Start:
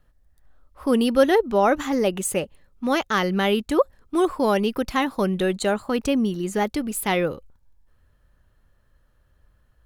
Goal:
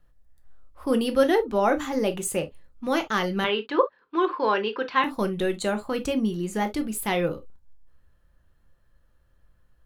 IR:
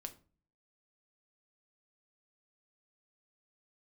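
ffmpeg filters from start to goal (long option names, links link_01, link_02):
-filter_complex "[0:a]asettb=1/sr,asplit=3[link_01][link_02][link_03];[link_01]atrim=end=3.444[link_04];[link_02]atrim=start=3.44:end=5.04,asetpts=PTS-STARTPTS,afade=type=in:duration=0.004:curve=qsin,afade=type=out:start_time=1.596:duration=0.004:curve=qsin,highpass=380,equalizer=frequency=430:width_type=q:width=4:gain=5,equalizer=frequency=680:width_type=q:width=4:gain=-6,equalizer=frequency=1000:width_type=q:width=4:gain=7,equalizer=frequency=1600:width_type=q:width=4:gain=8,equalizer=frequency=2700:width_type=q:width=4:gain=4,equalizer=frequency=4200:width_type=q:width=4:gain=3,lowpass=frequency=4200:width=0.5412,lowpass=frequency=4200:width=1.3066[link_05];[link_03]atrim=start=5.036[link_06];[link_04][link_05]acrossfade=duration=0.004:curve1=hsin:curve2=qsin[link_07];[link_07][link_06]acrossfade=duration=0.004:curve1=qsin:curve2=hsin[link_08];[1:a]atrim=start_sample=2205,atrim=end_sample=3087[link_09];[link_08][link_09]afir=irnorm=-1:irlink=0,volume=1dB"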